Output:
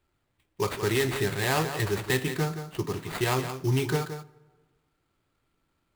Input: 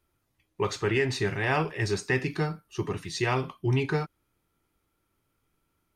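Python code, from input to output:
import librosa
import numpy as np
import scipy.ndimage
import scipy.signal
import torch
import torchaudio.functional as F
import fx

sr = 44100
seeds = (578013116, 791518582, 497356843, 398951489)

p1 = fx.sample_hold(x, sr, seeds[0], rate_hz=5800.0, jitter_pct=20)
p2 = p1 + fx.echo_single(p1, sr, ms=173, db=-10.0, dry=0)
y = fx.rev_plate(p2, sr, seeds[1], rt60_s=1.5, hf_ratio=0.6, predelay_ms=0, drr_db=20.0)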